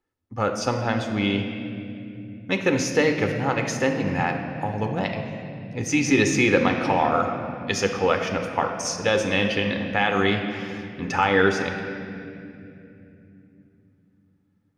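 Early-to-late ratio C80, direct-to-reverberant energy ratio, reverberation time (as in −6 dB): 7.0 dB, 4.0 dB, 2.8 s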